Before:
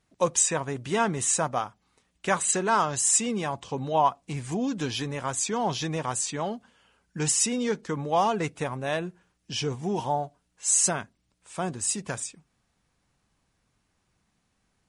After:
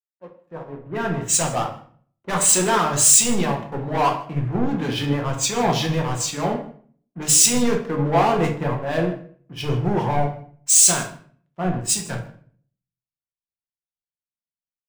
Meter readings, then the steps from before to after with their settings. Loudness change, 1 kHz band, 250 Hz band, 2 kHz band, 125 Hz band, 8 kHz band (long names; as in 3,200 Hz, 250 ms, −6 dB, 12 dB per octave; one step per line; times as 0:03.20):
+7.5 dB, +3.5 dB, +6.5 dB, +4.5 dB, +9.0 dB, +8.0 dB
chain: fade in at the beginning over 1.69 s
low-pass that shuts in the quiet parts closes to 400 Hz, open at −22 dBFS
upward compression, threshold −40 dBFS
leveller curve on the samples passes 5
on a send: single-tap delay 157 ms −17.5 dB
on the sum: rectangular room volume 190 cubic metres, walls mixed, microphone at 0.86 metres
multiband upward and downward expander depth 100%
level −10.5 dB